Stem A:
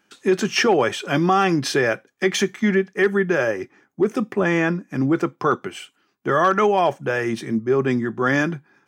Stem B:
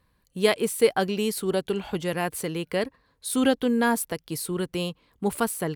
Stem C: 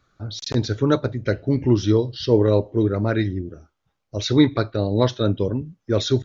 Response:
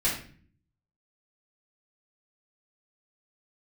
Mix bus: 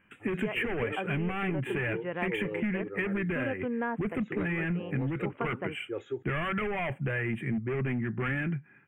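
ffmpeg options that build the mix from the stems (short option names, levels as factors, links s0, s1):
-filter_complex "[0:a]acontrast=57,volume=4.22,asoftclip=hard,volume=0.237,firequalizer=gain_entry='entry(120,0);entry(310,-12);entry(1000,-16);entry(2100,-2);entry(5200,-21)':delay=0.05:min_phase=1,volume=1.06[s0];[1:a]lowpass=f=2500:w=0.5412,lowpass=f=2500:w=1.3066,lowshelf=f=170:g=-9,volume=0.631[s1];[2:a]highpass=220,aecho=1:1:2.4:0.91,volume=0.15[s2];[s0][s1][s2]amix=inputs=3:normalize=0,asuperstop=centerf=4900:order=8:qfactor=1,acompressor=threshold=0.0398:ratio=6"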